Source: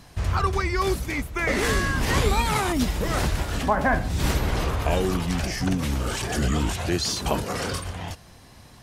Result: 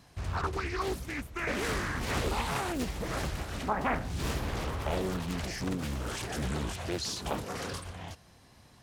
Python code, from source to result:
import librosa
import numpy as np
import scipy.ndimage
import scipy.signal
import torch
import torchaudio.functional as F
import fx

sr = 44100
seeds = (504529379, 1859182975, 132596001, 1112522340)

y = fx.law_mismatch(x, sr, coded='mu', at=(3.75, 6.26))
y = fx.highpass(y, sr, hz=49.0, slope=6)
y = fx.doppler_dist(y, sr, depth_ms=0.98)
y = y * librosa.db_to_amplitude(-8.5)